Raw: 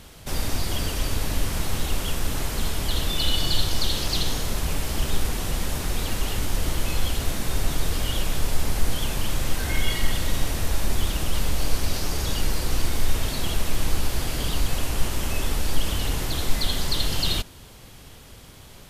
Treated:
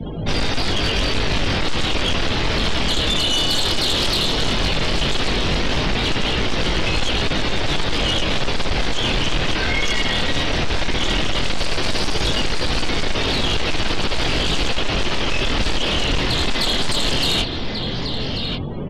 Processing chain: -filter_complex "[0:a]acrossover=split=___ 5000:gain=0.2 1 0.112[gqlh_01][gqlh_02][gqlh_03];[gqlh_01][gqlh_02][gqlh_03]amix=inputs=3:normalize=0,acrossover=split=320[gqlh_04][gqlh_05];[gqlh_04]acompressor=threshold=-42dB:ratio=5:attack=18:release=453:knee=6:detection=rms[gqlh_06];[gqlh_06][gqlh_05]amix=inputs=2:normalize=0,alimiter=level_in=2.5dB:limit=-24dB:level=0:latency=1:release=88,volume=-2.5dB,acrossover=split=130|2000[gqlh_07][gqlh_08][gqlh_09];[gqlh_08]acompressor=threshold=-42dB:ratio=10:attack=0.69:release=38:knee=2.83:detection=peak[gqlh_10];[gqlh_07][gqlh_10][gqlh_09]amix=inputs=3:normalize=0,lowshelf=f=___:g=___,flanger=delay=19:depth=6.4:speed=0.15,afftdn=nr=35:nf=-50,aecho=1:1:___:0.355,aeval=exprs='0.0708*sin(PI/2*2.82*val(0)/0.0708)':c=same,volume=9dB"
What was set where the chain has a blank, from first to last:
150, 320, 11.5, 1138